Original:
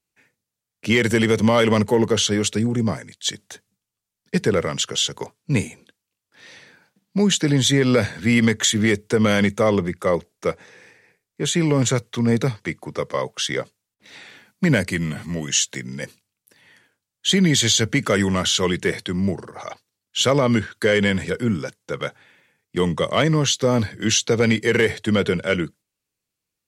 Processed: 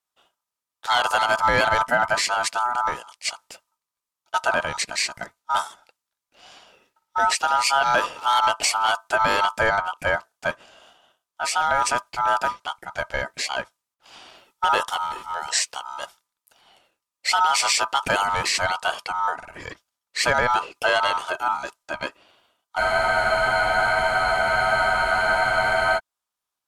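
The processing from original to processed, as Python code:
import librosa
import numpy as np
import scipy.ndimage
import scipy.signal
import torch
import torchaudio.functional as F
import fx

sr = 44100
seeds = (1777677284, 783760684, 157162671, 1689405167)

y = x * np.sin(2.0 * np.pi * 1100.0 * np.arange(len(x)) / sr)
y = fx.spec_freeze(y, sr, seeds[0], at_s=22.81, hold_s=3.15)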